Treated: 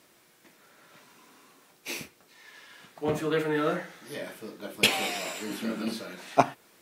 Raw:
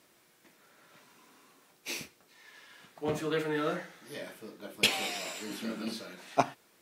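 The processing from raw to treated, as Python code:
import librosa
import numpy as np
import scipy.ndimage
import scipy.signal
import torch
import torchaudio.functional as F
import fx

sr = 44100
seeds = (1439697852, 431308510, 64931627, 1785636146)

p1 = fx.dynamic_eq(x, sr, hz=5000.0, q=0.81, threshold_db=-51.0, ratio=4.0, max_db=-4)
p2 = fx.rider(p1, sr, range_db=3, speed_s=2.0)
y = p1 + (p2 * librosa.db_to_amplitude(-2.5))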